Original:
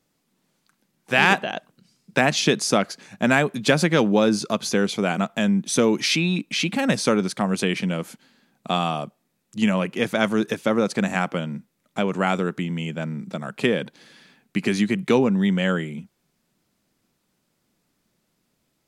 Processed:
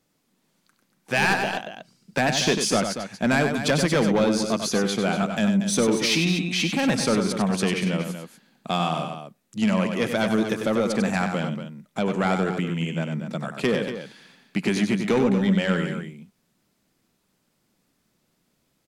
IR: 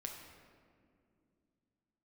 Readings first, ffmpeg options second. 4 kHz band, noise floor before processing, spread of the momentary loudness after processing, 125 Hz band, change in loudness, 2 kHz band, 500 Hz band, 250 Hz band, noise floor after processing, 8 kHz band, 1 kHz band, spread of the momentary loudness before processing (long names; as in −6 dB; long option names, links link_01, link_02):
−0.5 dB, −72 dBFS, 11 LU, 0.0 dB, −1.5 dB, −2.5 dB, −1.5 dB, −0.5 dB, −71 dBFS, +0.5 dB, −1.5 dB, 12 LU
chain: -af "asoftclip=type=tanh:threshold=-14dB,aecho=1:1:96.21|236.2:0.447|0.316"